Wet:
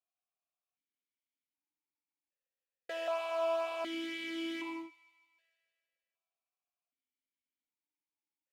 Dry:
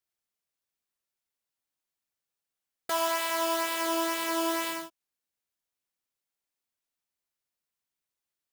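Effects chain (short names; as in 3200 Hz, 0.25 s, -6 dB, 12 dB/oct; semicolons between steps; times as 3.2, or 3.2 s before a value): thin delay 0.153 s, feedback 62%, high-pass 1600 Hz, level -17 dB; vowel sequencer 1.3 Hz; gain +5 dB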